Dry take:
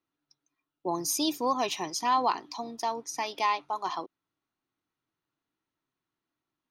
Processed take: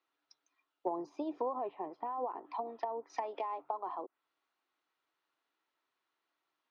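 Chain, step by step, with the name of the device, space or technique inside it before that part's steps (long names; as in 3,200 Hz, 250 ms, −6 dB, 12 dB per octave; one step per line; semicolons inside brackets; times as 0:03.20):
DJ mixer with the lows and highs turned down (three-way crossover with the lows and the highs turned down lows −24 dB, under 410 Hz, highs −20 dB, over 5,500 Hz; brickwall limiter −26.5 dBFS, peak gain reduction 11 dB)
treble cut that deepens with the level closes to 590 Hz, closed at −34.5 dBFS
0:01.58–0:03.10: high-frequency loss of the air 330 metres
level +5 dB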